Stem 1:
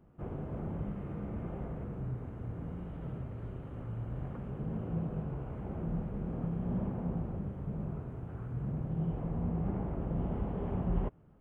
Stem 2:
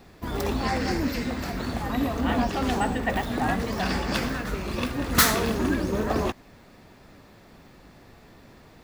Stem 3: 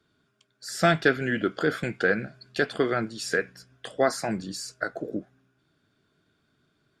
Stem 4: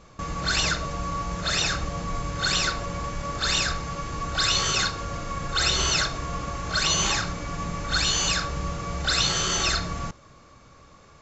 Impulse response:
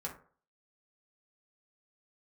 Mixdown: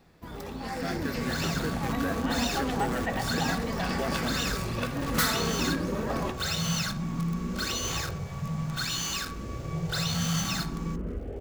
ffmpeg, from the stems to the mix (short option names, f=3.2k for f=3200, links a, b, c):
-filter_complex "[0:a]asplit=2[a][b];[b]afreqshift=0.57[c];[a][c]amix=inputs=2:normalize=1,adelay=750,volume=-4dB,asplit=2[d][e];[e]volume=-12dB[f];[1:a]volume=-11dB,asplit=2[g][h];[h]volume=-7.5dB[i];[2:a]volume=-15.5dB[j];[3:a]highpass=720,adelay=850,volume=-16.5dB,asplit=2[k][l];[l]volume=-13dB[m];[j][k]amix=inputs=2:normalize=0,acrusher=bits=8:dc=4:mix=0:aa=0.000001,alimiter=level_in=7.5dB:limit=-24dB:level=0:latency=1:release=362,volume=-7.5dB,volume=0dB[n];[d][g]amix=inputs=2:normalize=0,acompressor=threshold=-39dB:ratio=6,volume=0dB[o];[4:a]atrim=start_sample=2205[p];[f][i][m]amix=inputs=3:normalize=0[q];[q][p]afir=irnorm=-1:irlink=0[r];[n][o][r]amix=inputs=3:normalize=0,dynaudnorm=f=100:g=17:m=8.5dB"